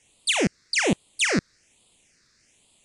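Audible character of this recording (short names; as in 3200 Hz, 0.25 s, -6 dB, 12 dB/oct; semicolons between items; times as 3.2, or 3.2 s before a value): a quantiser's noise floor 10-bit, dither triangular; phasing stages 6, 1.2 Hz, lowest notch 790–1600 Hz; MP3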